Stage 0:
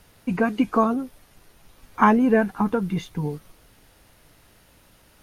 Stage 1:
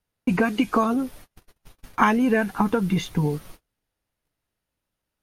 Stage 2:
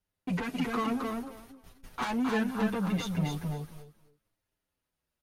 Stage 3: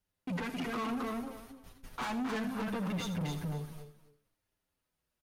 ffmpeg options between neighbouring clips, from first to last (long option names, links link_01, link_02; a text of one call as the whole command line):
ffmpeg -i in.wav -filter_complex "[0:a]agate=range=-34dB:threshold=-48dB:ratio=16:detection=peak,acrossover=split=2000[link_01][link_02];[link_01]acompressor=threshold=-25dB:ratio=6[link_03];[link_03][link_02]amix=inputs=2:normalize=0,volume=7dB" out.wav
ffmpeg -i in.wav -filter_complex "[0:a]asoftclip=type=tanh:threshold=-23dB,asplit=2[link_01][link_02];[link_02]aecho=0:1:265|530|795:0.631|0.114|0.0204[link_03];[link_01][link_03]amix=inputs=2:normalize=0,asplit=2[link_04][link_05];[link_05]adelay=7.2,afreqshift=-0.68[link_06];[link_04][link_06]amix=inputs=2:normalize=1,volume=-2dB" out.wav
ffmpeg -i in.wav -af "asoftclip=type=tanh:threshold=-32dB,aecho=1:1:80:0.251" out.wav